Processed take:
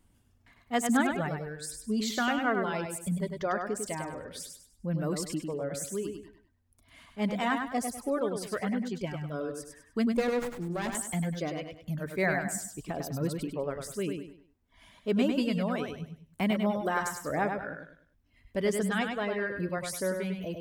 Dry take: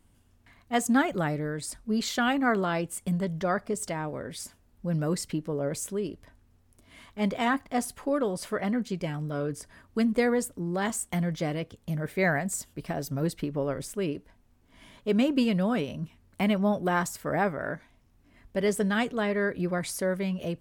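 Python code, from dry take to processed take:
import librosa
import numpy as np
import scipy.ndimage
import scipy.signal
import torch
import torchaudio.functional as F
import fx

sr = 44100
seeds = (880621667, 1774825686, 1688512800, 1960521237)

p1 = fx.dereverb_blind(x, sr, rt60_s=1.8)
p2 = p1 + fx.echo_feedback(p1, sr, ms=100, feedback_pct=33, wet_db=-5.5, dry=0)
p3 = fx.running_max(p2, sr, window=9, at=(10.17, 10.95))
y = F.gain(torch.from_numpy(p3), -2.5).numpy()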